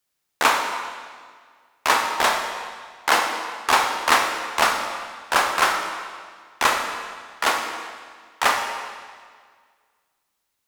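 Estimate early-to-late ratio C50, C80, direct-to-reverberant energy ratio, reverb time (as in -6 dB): 4.0 dB, 6.0 dB, 2.5 dB, 1.8 s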